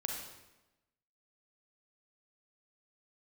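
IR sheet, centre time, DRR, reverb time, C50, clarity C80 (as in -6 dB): 51 ms, 0.5 dB, 1.0 s, 2.0 dB, 5.0 dB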